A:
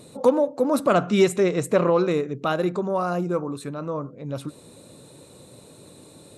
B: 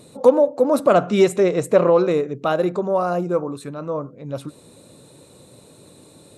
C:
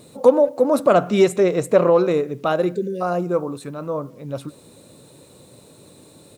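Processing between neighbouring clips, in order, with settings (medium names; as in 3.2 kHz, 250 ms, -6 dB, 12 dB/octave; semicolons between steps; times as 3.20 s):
dynamic bell 580 Hz, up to +6 dB, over -33 dBFS, Q 1.1
spectral selection erased 2.67–3.01 s, 550–1500 Hz; bit crusher 10-bit; speakerphone echo 190 ms, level -29 dB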